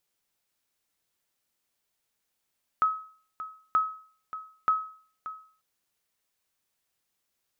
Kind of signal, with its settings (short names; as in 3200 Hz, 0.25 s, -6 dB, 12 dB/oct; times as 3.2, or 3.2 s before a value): sonar ping 1280 Hz, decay 0.47 s, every 0.93 s, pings 3, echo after 0.58 s, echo -14 dB -16.5 dBFS